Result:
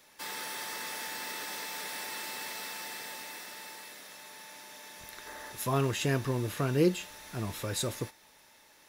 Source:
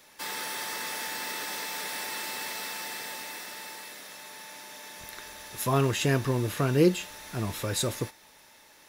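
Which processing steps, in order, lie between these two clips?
time-frequency box 5.27–5.52 s, 220–2100 Hz +7 dB; trim -4 dB

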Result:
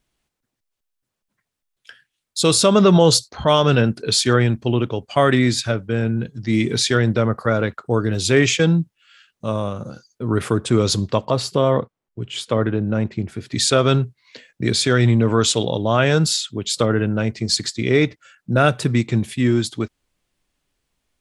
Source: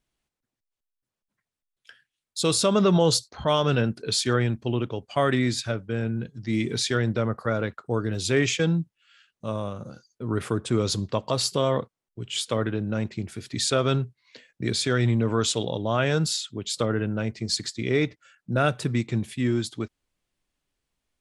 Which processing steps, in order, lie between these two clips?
11.25–13.52 s: treble shelf 3 kHz -11.5 dB; trim +7 dB

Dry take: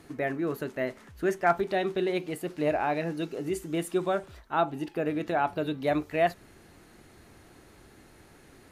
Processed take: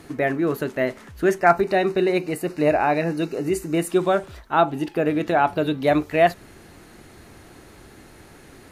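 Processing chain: 1.38–3.90 s: Butterworth band-stop 3.3 kHz, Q 4.1; trim +8 dB

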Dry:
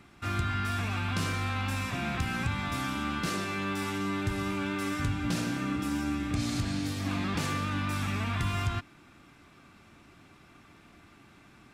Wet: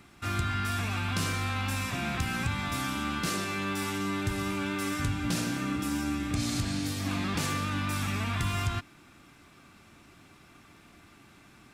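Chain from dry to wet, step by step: treble shelf 5.3 kHz +7 dB

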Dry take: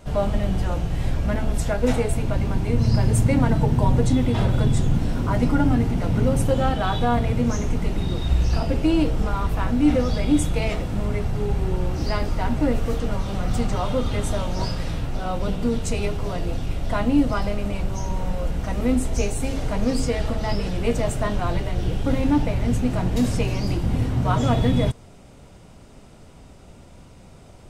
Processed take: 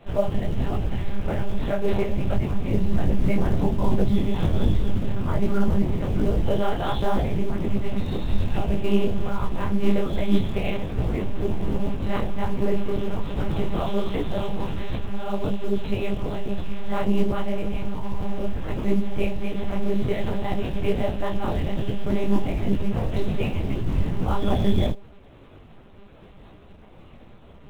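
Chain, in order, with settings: de-hum 70.7 Hz, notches 12; monotone LPC vocoder at 8 kHz 200 Hz; in parallel at -10 dB: short-mantissa float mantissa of 2-bit; on the sum: dynamic bell 1.4 kHz, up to -5 dB, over -36 dBFS, Q 0.98; detune thickener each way 44 cents

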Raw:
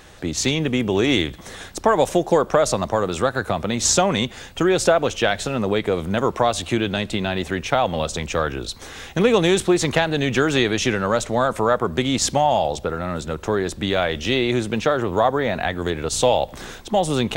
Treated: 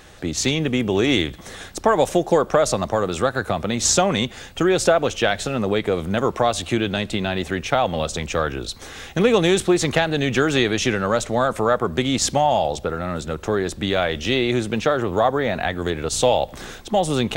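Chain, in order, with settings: band-stop 970 Hz, Q 17

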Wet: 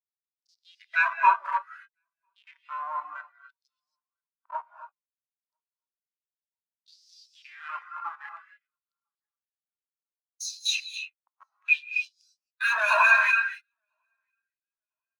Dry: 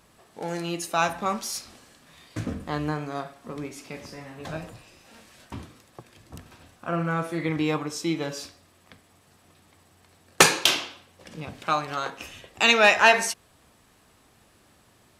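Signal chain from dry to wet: self-modulated delay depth 0.64 ms; rippled EQ curve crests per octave 1.5, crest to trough 17 dB; waveshaping leveller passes 2; upward compressor, threshold -23 dBFS; spectral noise reduction 16 dB; Schmitt trigger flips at -17.5 dBFS; LFO high-pass sine 0.6 Hz 970–5200 Hz; saturation -13.5 dBFS, distortion -17 dB; feedback delay 999 ms, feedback 43%, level -23.5 dB; gated-style reverb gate 310 ms rising, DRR 2 dB; spectral contrast expander 2.5:1

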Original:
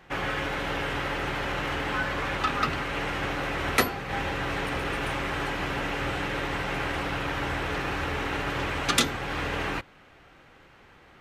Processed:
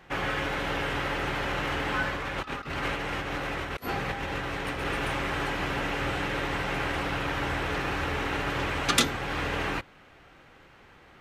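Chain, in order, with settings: 2.09–4.86 s: compressor with a negative ratio -32 dBFS, ratio -0.5

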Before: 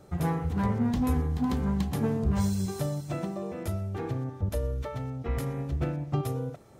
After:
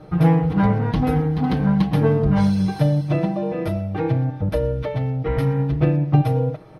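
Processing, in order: boxcar filter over 6 samples; comb 6.4 ms, depth 89%; trim +8.5 dB

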